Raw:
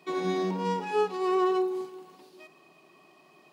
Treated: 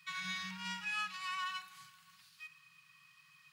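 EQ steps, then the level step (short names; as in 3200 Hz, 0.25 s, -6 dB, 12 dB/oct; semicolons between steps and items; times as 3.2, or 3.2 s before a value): elliptic band-stop 130–1400 Hz, stop band 60 dB; dynamic EQ 2600 Hz, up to +5 dB, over -58 dBFS, Q 2.4; 0.0 dB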